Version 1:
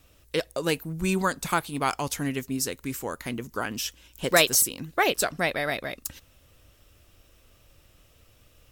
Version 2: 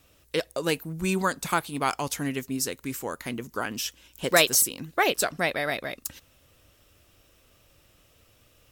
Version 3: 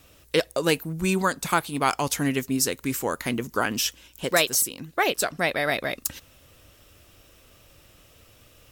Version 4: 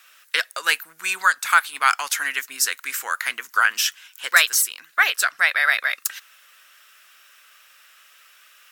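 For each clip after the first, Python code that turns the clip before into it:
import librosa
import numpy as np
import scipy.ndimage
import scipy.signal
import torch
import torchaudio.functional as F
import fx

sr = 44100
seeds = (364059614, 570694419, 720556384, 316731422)

y1 = fx.low_shelf(x, sr, hz=67.0, db=-9.5)
y2 = fx.rider(y1, sr, range_db=4, speed_s=0.5)
y2 = y2 * 10.0 ** (2.0 / 20.0)
y3 = fx.highpass_res(y2, sr, hz=1500.0, q=2.7)
y3 = y3 * 10.0 ** (3.0 / 20.0)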